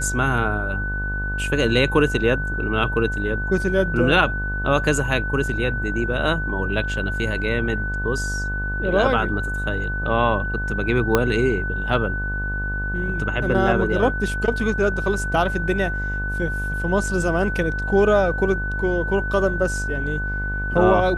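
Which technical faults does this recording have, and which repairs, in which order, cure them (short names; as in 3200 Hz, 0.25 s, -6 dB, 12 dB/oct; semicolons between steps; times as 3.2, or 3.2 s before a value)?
buzz 50 Hz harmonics 24 -27 dBFS
tone 1500 Hz -26 dBFS
11.15 pop -3 dBFS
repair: de-click; de-hum 50 Hz, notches 24; notch 1500 Hz, Q 30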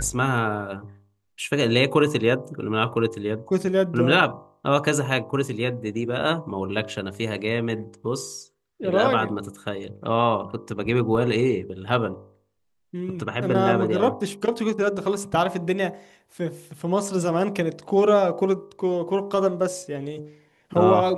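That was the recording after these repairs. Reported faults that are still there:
11.15 pop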